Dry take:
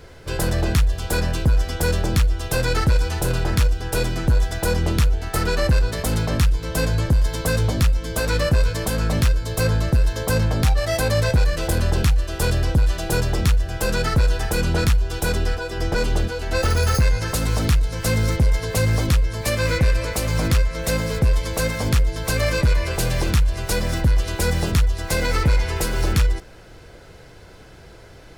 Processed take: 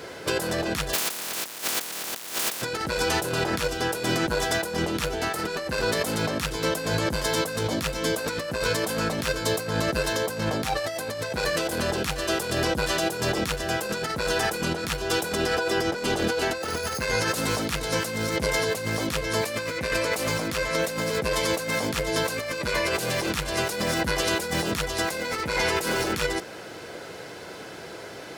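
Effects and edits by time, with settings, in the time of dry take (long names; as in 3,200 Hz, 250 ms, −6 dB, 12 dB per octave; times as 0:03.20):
0:00.93–0:02.61: compressing power law on the bin magnitudes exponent 0.15
whole clip: high-pass filter 230 Hz 12 dB per octave; compressor whose output falls as the input rises −31 dBFS, ratio −1; level +3.5 dB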